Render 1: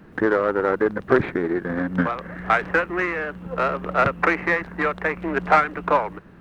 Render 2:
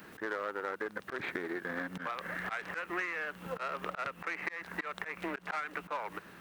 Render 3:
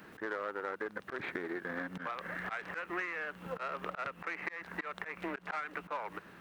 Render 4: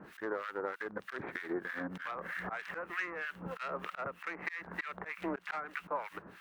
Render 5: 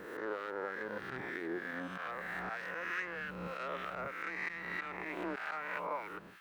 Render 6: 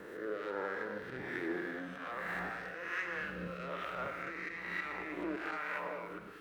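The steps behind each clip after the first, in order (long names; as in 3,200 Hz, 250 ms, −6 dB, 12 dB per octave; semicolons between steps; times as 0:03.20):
spectral tilt +4 dB per octave; volume swells 262 ms; downward compressor 6 to 1, threshold −34 dBFS, peak gain reduction 15.5 dB
high-shelf EQ 4,600 Hz −7 dB; level −1 dB
two-band tremolo in antiphase 3.2 Hz, depth 100%, crossover 1,300 Hz; level +5 dB
peak hold with a rise ahead of every peak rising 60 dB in 1.34 s; level −4.5 dB
rotating-speaker cabinet horn 1.2 Hz; reverb whose tail is shaped and stops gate 240 ms flat, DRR 4.5 dB; level +1.5 dB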